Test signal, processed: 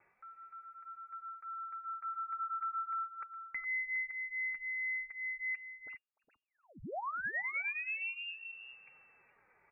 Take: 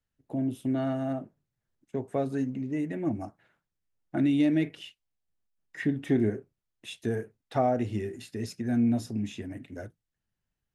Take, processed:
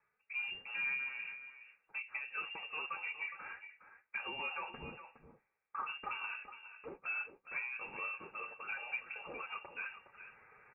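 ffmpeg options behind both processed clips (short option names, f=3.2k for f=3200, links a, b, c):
-filter_complex "[0:a]highpass=f=590:w=0.5412,highpass=f=590:w=1.3066,aecho=1:1:2.7:0.42,areverse,acompressor=mode=upward:threshold=-38dB:ratio=2.5,areverse,alimiter=level_in=0.5dB:limit=-24dB:level=0:latency=1,volume=-0.5dB,acompressor=threshold=-38dB:ratio=8,asoftclip=type=tanh:threshold=-35.5dB,afreqshift=-270,flanger=delay=3.7:depth=6.5:regen=-16:speed=0.31:shape=sinusoidal,asplit=2[a][b];[b]aecho=0:1:414:0.266[c];[a][c]amix=inputs=2:normalize=0,lowpass=f=2.4k:t=q:w=0.5098,lowpass=f=2.4k:t=q:w=0.6013,lowpass=f=2.4k:t=q:w=0.9,lowpass=f=2.4k:t=q:w=2.563,afreqshift=-2800,volume=7dB"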